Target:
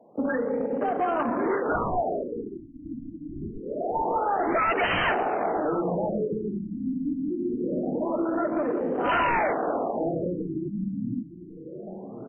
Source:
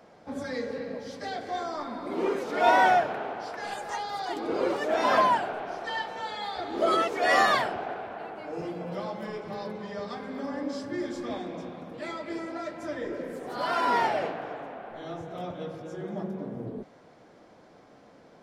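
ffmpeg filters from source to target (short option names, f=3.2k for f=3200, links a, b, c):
-filter_complex "[0:a]highpass=230,afwtdn=0.0126,lowpass=f=7.2k:w=0.5412,lowpass=f=7.2k:w=1.3066,lowshelf=f=490:g=11.5,acrossover=split=1100[a][b];[a]acompressor=threshold=-35dB:ratio=12[c];[c][b]amix=inputs=2:normalize=0,atempo=1.5,aeval=exprs='0.178*sin(PI/2*4.47*val(0)/0.178)':c=same,aecho=1:1:1099|2198|3297|4396:0.237|0.107|0.048|0.0216,afftfilt=real='re*lt(b*sr/1024,300*pow(3200/300,0.5+0.5*sin(2*PI*0.25*pts/sr)))':imag='im*lt(b*sr/1024,300*pow(3200/300,0.5+0.5*sin(2*PI*0.25*pts/sr)))':win_size=1024:overlap=0.75,volume=-4.5dB"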